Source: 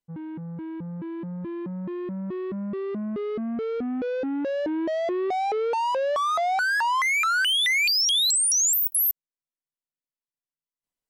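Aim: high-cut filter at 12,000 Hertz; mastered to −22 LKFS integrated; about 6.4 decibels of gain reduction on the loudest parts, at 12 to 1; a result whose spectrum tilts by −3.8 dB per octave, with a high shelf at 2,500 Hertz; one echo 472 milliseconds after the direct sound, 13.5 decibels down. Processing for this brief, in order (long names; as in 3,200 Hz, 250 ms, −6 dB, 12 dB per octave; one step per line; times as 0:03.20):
low-pass filter 12,000 Hz
high-shelf EQ 2,500 Hz −5 dB
downward compressor 12 to 1, threshold −30 dBFS
single-tap delay 472 ms −13.5 dB
level +9.5 dB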